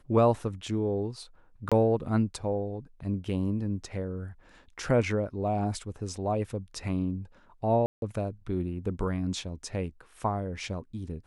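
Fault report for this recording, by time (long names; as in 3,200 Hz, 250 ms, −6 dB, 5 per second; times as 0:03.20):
0:01.69–0:01.72: drop-out 26 ms
0:07.86–0:08.02: drop-out 162 ms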